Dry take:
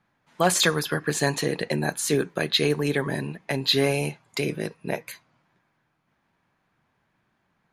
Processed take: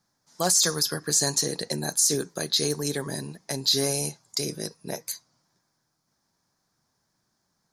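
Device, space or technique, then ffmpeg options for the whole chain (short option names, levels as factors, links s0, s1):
over-bright horn tweeter: -af "highshelf=f=3800:t=q:w=3:g=12.5,alimiter=limit=0.501:level=0:latency=1:release=35,volume=0.562"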